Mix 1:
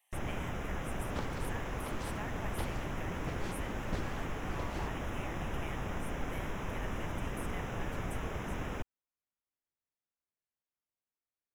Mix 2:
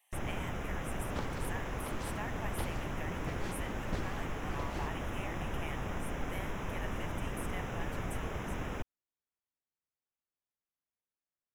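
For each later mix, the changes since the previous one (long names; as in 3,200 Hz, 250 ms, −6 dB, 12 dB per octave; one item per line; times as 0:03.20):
speech +3.0 dB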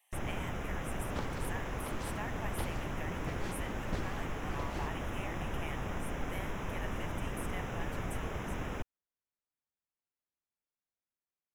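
nothing changed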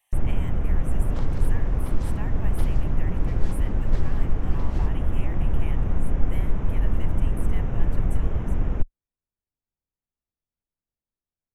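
first sound: add spectral tilt −4 dB per octave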